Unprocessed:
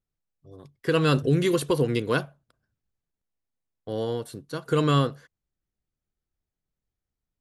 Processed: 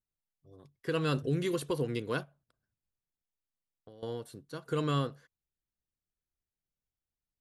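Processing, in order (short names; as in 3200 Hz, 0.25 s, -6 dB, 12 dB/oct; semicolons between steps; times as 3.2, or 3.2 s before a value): 2.23–4.03 compressor 6:1, threshold -43 dBFS, peak gain reduction 17 dB; gain -9 dB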